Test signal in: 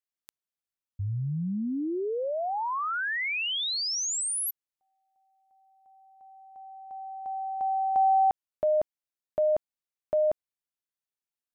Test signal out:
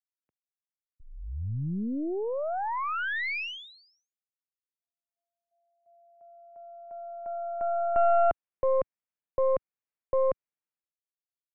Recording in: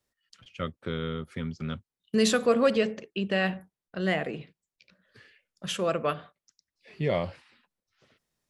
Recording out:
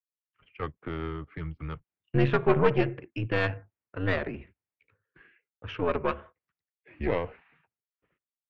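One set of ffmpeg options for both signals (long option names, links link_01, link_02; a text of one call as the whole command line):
ffmpeg -i in.wav -af "highpass=frequency=160:width_type=q:width=0.5412,highpass=frequency=160:width_type=q:width=1.307,lowpass=frequency=2700:width_type=q:width=0.5176,lowpass=frequency=2700:width_type=q:width=0.7071,lowpass=frequency=2700:width_type=q:width=1.932,afreqshift=-84,agate=range=-33dB:threshold=-56dB:ratio=3:release=476:detection=peak,aeval=exprs='0.299*(cos(1*acos(clip(val(0)/0.299,-1,1)))-cos(1*PI/2))+0.00944*(cos(3*acos(clip(val(0)/0.299,-1,1)))-cos(3*PI/2))+0.0596*(cos(4*acos(clip(val(0)/0.299,-1,1)))-cos(4*PI/2))':channel_layout=same" out.wav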